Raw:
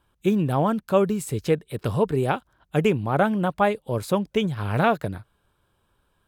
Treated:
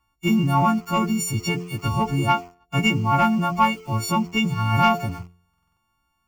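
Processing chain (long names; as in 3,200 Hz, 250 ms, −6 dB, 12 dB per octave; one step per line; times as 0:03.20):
every partial snapped to a pitch grid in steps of 4 semitones
high-shelf EQ 4,000 Hz −7 dB
hum removal 87.86 Hz, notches 8
leveller curve on the samples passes 1
in parallel at −11 dB: bit-depth reduction 6 bits, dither none
on the sum: phaser with its sweep stopped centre 2,500 Hz, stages 8
buffer that repeats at 0:05.49, samples 2,048, times 5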